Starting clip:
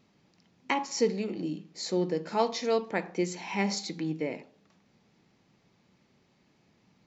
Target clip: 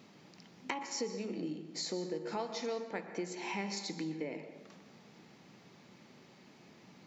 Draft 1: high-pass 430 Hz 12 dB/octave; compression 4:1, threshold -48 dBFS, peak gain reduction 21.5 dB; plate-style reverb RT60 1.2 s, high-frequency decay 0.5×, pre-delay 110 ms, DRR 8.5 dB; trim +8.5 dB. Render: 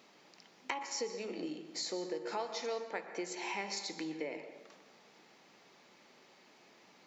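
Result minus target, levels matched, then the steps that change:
125 Hz band -10.0 dB
change: high-pass 150 Hz 12 dB/octave

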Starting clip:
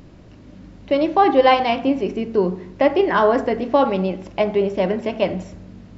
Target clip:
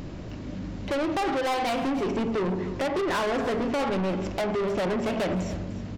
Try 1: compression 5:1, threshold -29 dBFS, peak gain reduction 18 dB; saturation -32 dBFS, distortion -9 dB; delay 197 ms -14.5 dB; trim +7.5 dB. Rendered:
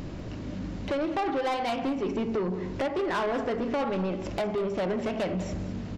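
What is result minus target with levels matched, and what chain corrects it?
compression: peak gain reduction +7 dB; echo 103 ms early
compression 5:1, threshold -20 dBFS, peak gain reduction 10.5 dB; saturation -32 dBFS, distortion -5 dB; delay 300 ms -14.5 dB; trim +7.5 dB

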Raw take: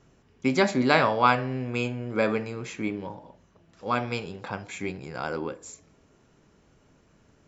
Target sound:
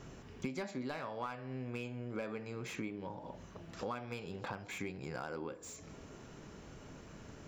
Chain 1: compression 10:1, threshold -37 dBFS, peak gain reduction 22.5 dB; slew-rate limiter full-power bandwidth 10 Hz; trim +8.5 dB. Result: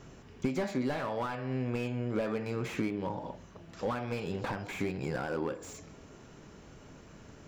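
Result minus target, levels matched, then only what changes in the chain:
compression: peak gain reduction -9 dB
change: compression 10:1, threshold -47 dBFS, peak gain reduction 31.5 dB

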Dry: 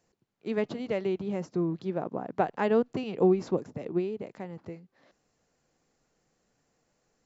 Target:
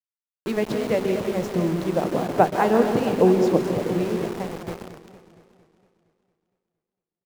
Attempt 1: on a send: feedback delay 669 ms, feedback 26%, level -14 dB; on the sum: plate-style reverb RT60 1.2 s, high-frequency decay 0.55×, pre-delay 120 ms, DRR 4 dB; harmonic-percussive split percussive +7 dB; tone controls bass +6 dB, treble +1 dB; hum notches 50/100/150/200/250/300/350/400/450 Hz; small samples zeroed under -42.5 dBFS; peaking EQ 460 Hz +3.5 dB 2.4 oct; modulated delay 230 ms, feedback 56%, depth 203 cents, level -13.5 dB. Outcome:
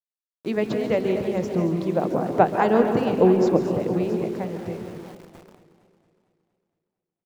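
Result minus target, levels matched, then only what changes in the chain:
small samples zeroed: distortion -14 dB
change: small samples zeroed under -31.5 dBFS

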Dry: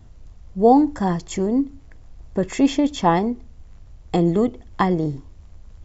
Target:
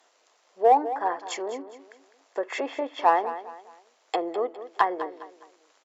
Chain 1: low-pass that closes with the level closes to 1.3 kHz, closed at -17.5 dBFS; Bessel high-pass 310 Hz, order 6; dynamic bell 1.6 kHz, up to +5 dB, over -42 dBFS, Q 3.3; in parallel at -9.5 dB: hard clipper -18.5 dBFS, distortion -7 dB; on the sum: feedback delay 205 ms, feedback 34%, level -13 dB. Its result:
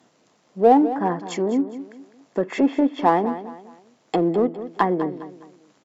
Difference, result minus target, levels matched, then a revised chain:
250 Hz band +12.0 dB
low-pass that closes with the level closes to 1.3 kHz, closed at -17.5 dBFS; Bessel high-pass 710 Hz, order 6; dynamic bell 1.6 kHz, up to +5 dB, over -42 dBFS, Q 3.3; in parallel at -9.5 dB: hard clipper -18.5 dBFS, distortion -9 dB; on the sum: feedback delay 205 ms, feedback 34%, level -13 dB

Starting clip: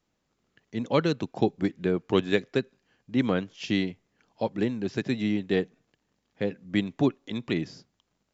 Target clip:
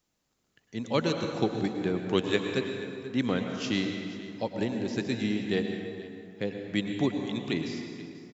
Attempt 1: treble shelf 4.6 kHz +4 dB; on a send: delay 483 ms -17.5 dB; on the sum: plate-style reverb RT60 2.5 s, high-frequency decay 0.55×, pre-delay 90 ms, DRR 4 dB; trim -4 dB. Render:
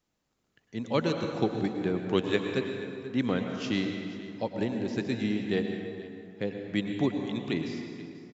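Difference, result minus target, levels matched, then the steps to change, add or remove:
8 kHz band -4.5 dB
change: treble shelf 4.6 kHz +11.5 dB

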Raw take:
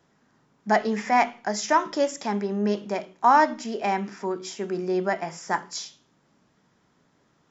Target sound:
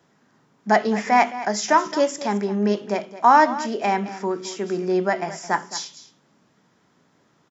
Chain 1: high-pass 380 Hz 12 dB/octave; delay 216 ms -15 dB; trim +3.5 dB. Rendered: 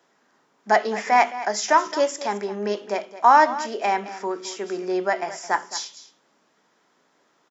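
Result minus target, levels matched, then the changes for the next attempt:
125 Hz band -10.5 dB
change: high-pass 98 Hz 12 dB/octave

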